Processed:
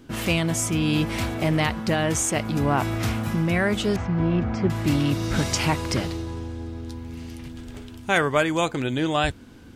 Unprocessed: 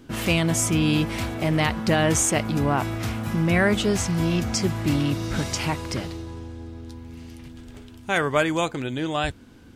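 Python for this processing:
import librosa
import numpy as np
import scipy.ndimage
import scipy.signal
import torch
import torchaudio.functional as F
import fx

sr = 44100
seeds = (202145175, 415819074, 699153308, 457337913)

y = fx.lowpass(x, sr, hz=1700.0, slope=12, at=(3.96, 4.7))
y = fx.rider(y, sr, range_db=4, speed_s=0.5)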